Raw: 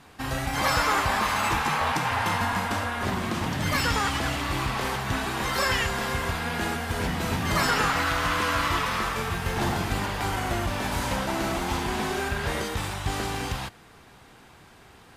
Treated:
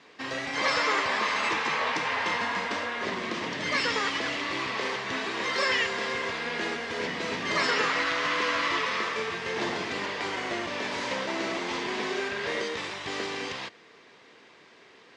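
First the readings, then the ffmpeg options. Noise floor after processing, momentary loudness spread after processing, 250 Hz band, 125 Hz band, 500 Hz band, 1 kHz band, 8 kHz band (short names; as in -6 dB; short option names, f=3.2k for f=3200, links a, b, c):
-55 dBFS, 7 LU, -5.5 dB, -16.5 dB, 0.0 dB, -4.0 dB, -6.5 dB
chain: -af "highpass=320,equalizer=f=450:t=q:w=4:g=4,equalizer=f=790:t=q:w=4:g=-9,equalizer=f=1.4k:t=q:w=4:g=-6,equalizer=f=2k:t=q:w=4:g=4,lowpass=f=6k:w=0.5412,lowpass=f=6k:w=1.3066"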